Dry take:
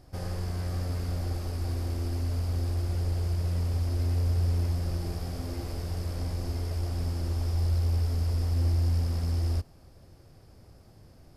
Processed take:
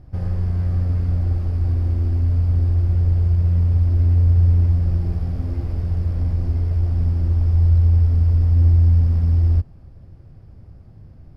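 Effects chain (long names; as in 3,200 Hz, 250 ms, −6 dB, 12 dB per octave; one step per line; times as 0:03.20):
bass and treble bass +12 dB, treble −15 dB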